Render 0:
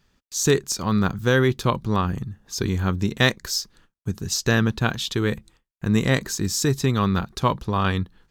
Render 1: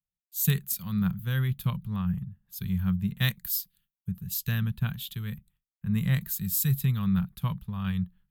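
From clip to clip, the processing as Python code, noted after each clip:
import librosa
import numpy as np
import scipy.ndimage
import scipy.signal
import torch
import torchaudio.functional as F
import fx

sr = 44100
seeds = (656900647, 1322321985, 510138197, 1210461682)

y = fx.curve_eq(x, sr, hz=(100.0, 180.0, 300.0, 3200.0, 5900.0, 13000.0), db=(0, 7, -22, -2, -15, 15))
y = fx.band_widen(y, sr, depth_pct=70)
y = y * 10.0 ** (-6.0 / 20.0)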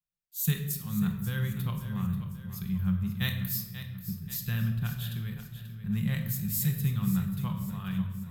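y = fx.echo_feedback(x, sr, ms=536, feedback_pct=46, wet_db=-12.0)
y = fx.room_shoebox(y, sr, seeds[0], volume_m3=590.0, walls='mixed', distance_m=0.88)
y = y * 10.0 ** (-4.5 / 20.0)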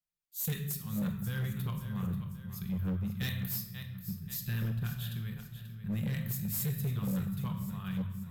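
y = np.clip(10.0 ** (26.0 / 20.0) * x, -1.0, 1.0) / 10.0 ** (26.0 / 20.0)
y = y * 10.0 ** (-3.0 / 20.0)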